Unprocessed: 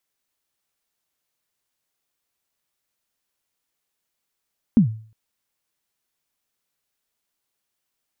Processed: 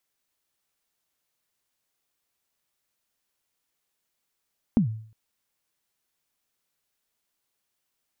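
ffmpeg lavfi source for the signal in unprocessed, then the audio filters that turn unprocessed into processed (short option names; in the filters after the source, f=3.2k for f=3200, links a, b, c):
-f lavfi -i "aevalsrc='0.447*pow(10,-3*t/0.45)*sin(2*PI*(250*0.107/log(110/250)*(exp(log(110/250)*min(t,0.107)/0.107)-1)+110*max(t-0.107,0)))':d=0.36:s=44100"
-af "acompressor=threshold=-20dB:ratio=4"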